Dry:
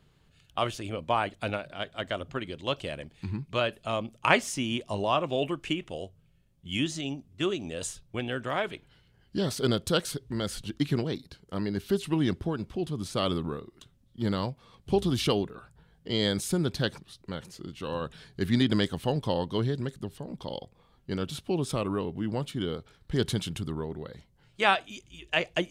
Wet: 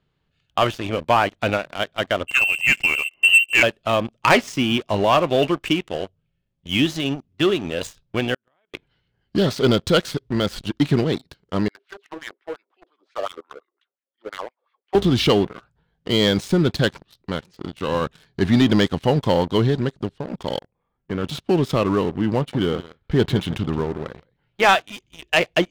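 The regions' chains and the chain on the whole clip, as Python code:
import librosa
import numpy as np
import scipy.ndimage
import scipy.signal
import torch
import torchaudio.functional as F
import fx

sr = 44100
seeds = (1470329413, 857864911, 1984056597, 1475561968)

y = fx.chain(x, sr, fx.small_body(hz=(200.0, 770.0), ring_ms=55, db=17),
    fx.freq_invert(carrier_hz=2900), at=(2.27, 3.63))
y = fx.chain(y, sr, fx.bass_treble(bass_db=-3, treble_db=2),
    fx.level_steps(step_db=16),
    fx.gate_flip(shuts_db=-32.0, range_db=-29), at=(8.34, 8.74))
y = fx.chain(y, sr, fx.tilt_shelf(db=-4.0, hz=870.0),
    fx.wah_lfo(hz=5.7, low_hz=460.0, high_hz=2200.0, q=4.0),
    fx.steep_highpass(hz=270.0, slope=36), at=(11.68, 14.95))
y = fx.chain(y, sr, fx.lowpass(hz=2600.0, slope=24),
    fx.level_steps(step_db=17), at=(20.59, 21.24))
y = fx.chain(y, sr, fx.lowpass(hz=3200.0, slope=12),
    fx.echo_single(ms=169, db=-14.5), at=(22.36, 24.69))
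y = scipy.signal.sosfilt(scipy.signal.butter(2, 4500.0, 'lowpass', fs=sr, output='sos'), y)
y = fx.low_shelf(y, sr, hz=150.0, db=-3.5)
y = fx.leveller(y, sr, passes=3)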